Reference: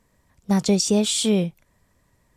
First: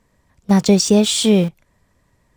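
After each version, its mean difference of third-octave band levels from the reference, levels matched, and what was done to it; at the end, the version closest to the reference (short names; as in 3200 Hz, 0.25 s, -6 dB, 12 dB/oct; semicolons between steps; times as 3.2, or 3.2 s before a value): 1.5 dB: high shelf 9100 Hz -8 dB; in parallel at -6.5 dB: sample gate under -28.5 dBFS; on the sum: gain +3 dB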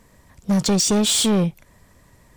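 4.5 dB: in parallel at -1.5 dB: compressor, threshold -29 dBFS, peak gain reduction 14 dB; on the sum: soft clip -20 dBFS, distortion -9 dB; gain +5.5 dB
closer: first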